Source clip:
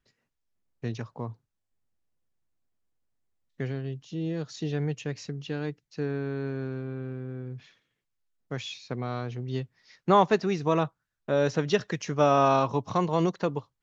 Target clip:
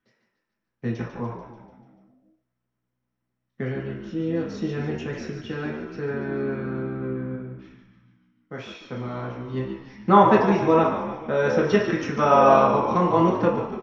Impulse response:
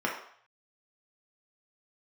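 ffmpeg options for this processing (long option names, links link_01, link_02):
-filter_complex "[0:a]asplit=8[link_01][link_02][link_03][link_04][link_05][link_06][link_07][link_08];[link_02]adelay=146,afreqshift=-62,volume=-9dB[link_09];[link_03]adelay=292,afreqshift=-124,volume=-13.6dB[link_10];[link_04]adelay=438,afreqshift=-186,volume=-18.2dB[link_11];[link_05]adelay=584,afreqshift=-248,volume=-22.7dB[link_12];[link_06]adelay=730,afreqshift=-310,volume=-27.3dB[link_13];[link_07]adelay=876,afreqshift=-372,volume=-31.9dB[link_14];[link_08]adelay=1022,afreqshift=-434,volume=-36.5dB[link_15];[link_01][link_09][link_10][link_11][link_12][link_13][link_14][link_15]amix=inputs=8:normalize=0,asplit=3[link_16][link_17][link_18];[link_16]afade=type=out:start_time=7.35:duration=0.02[link_19];[link_17]flanger=delay=3.2:depth=8.6:regen=-59:speed=1.7:shape=sinusoidal,afade=type=in:start_time=7.35:duration=0.02,afade=type=out:start_time=9.56:duration=0.02[link_20];[link_18]afade=type=in:start_time=9.56:duration=0.02[link_21];[link_19][link_20][link_21]amix=inputs=3:normalize=0[link_22];[1:a]atrim=start_sample=2205[link_23];[link_22][link_23]afir=irnorm=-1:irlink=0,volume=-4dB"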